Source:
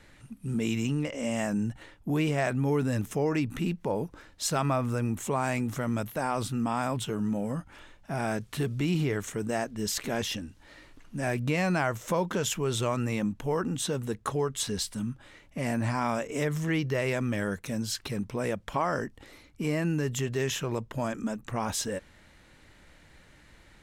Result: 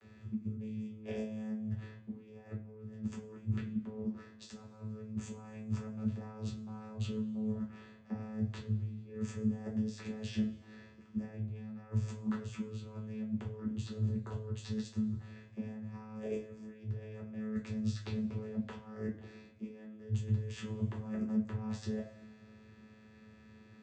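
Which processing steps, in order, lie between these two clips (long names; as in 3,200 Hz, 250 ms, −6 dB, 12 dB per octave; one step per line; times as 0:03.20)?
compressor whose output falls as the input rises −35 dBFS, ratio −0.5
channel vocoder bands 16, saw 108 Hz
coupled-rooms reverb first 0.29 s, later 1.8 s, from −21 dB, DRR −2.5 dB
level −4.5 dB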